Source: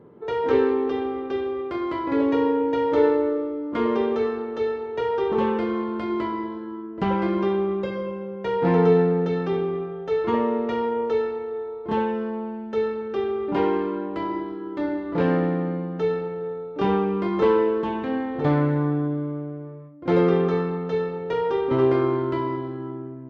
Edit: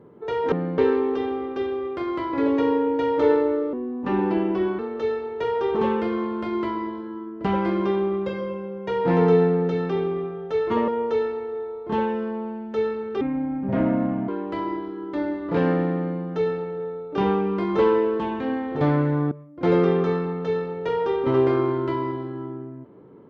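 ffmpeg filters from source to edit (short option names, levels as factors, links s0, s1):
-filter_complex "[0:a]asplit=9[s0][s1][s2][s3][s4][s5][s6][s7][s8];[s0]atrim=end=0.522[s9];[s1]atrim=start=15.578:end=15.842[s10];[s2]atrim=start=0.518:end=3.474[s11];[s3]atrim=start=3.47:end=4.36,asetpts=PTS-STARTPTS,asetrate=37044,aresample=44100[s12];[s4]atrim=start=4.356:end=10.452[s13];[s5]atrim=start=10.868:end=13.204[s14];[s6]atrim=start=13.2:end=13.92,asetpts=PTS-STARTPTS,asetrate=29547,aresample=44100,atrim=end_sample=47391,asetpts=PTS-STARTPTS[s15];[s7]atrim=start=13.916:end=18.952[s16];[s8]atrim=start=19.758[s17];[s9][s10]acrossfade=d=0.004:c1=hsin:c2=hsin[s18];[s18][s11]acrossfade=d=0.004:c1=hsin:c2=hsin[s19];[s19][s12]acrossfade=d=0.004:c1=hsin:c2=hsin[s20];[s20][s13]acrossfade=d=0.004:c1=hsin:c2=hsin[s21];[s21][s14]acrossfade=d=0.004:c1=hsin:c2=hsin[s22];[s22][s15]acrossfade=d=0.004:c1=hsin:c2=hsin[s23];[s23][s16]acrossfade=d=0.004:c1=hsin:c2=hsin[s24];[s24][s17]acrossfade=d=0.004:c1=hsin:c2=hsin"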